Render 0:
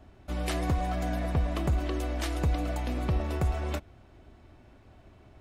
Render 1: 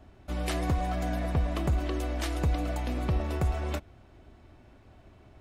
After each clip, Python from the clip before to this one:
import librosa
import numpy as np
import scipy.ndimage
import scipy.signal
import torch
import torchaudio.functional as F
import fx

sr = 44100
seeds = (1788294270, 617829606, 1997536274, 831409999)

y = x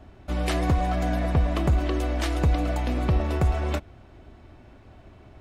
y = fx.high_shelf(x, sr, hz=7400.0, db=-6.5)
y = y * librosa.db_to_amplitude(5.5)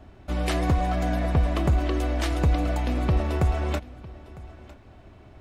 y = x + 10.0 ** (-20.0 / 20.0) * np.pad(x, (int(954 * sr / 1000.0), 0))[:len(x)]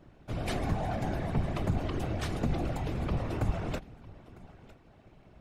y = fx.whisperise(x, sr, seeds[0])
y = y * librosa.db_to_amplitude(-7.5)